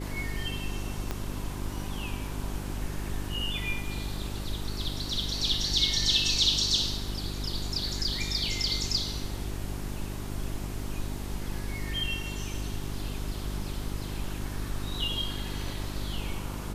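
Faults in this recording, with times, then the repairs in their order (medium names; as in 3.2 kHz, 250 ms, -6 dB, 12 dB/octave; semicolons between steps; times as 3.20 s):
hum 50 Hz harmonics 8 -36 dBFS
1.11 s: pop -17 dBFS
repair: de-click; de-hum 50 Hz, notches 8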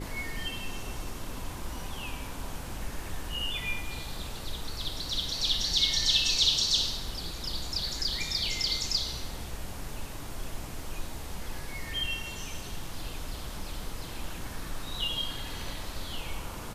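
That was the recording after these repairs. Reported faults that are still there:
1.11 s: pop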